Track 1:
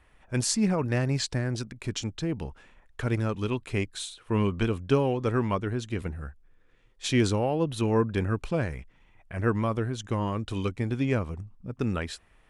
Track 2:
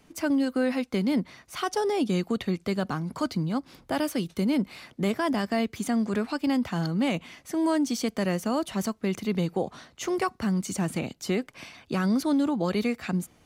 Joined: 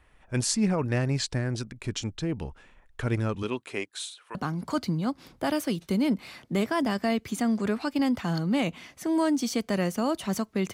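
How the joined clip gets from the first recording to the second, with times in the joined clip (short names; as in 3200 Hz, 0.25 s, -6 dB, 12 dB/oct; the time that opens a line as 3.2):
track 1
3.42–4.35 HPF 180 Hz -> 990 Hz
4.35 switch to track 2 from 2.83 s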